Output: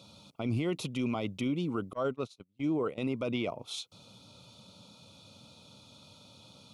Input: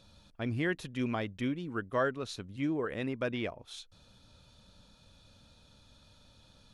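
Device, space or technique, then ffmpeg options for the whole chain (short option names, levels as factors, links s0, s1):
PA system with an anti-feedback notch: -filter_complex "[0:a]highpass=f=110:w=0.5412,highpass=f=110:w=1.3066,asuperstop=centerf=1700:order=4:qfactor=2.1,alimiter=level_in=2:limit=0.0631:level=0:latency=1:release=26,volume=0.501,asettb=1/sr,asplit=3[s0][s1][s2];[s0]atrim=end=1.934[s3];[s1]atrim=start=1.93:end=2.98,asetpts=PTS-STARTPTS,afade=t=in:d=0.004:c=qsin,afade=t=out:st=1.046:d=0.004:c=qsin,agate=range=0.0178:threshold=0.0126:ratio=16:detection=peak[s4];[s2]atrim=start=2.976[s5];[s3][s4]acrossfade=d=0.004:c1=hsin:c2=qsin[s6];[s6][s5]acrossfade=d=0.004:c1=qsin:c2=hsin,volume=2.24"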